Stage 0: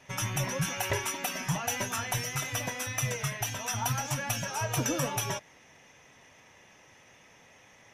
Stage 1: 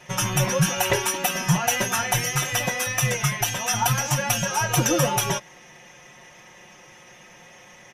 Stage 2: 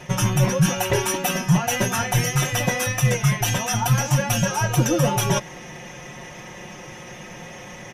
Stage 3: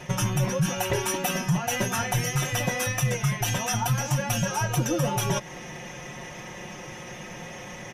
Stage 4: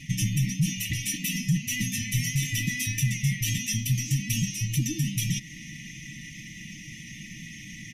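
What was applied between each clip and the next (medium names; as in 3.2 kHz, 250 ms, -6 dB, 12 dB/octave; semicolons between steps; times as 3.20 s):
comb 5.6 ms, depth 68%; trim +7.5 dB
reverse; compression, threshold -29 dBFS, peak gain reduction 13.5 dB; reverse; bass shelf 490 Hz +9 dB; trim +7 dB
compression 2:1, threshold -24 dBFS, peak gain reduction 6.5 dB; trim -1 dB
brick-wall FIR band-stop 320–1800 Hz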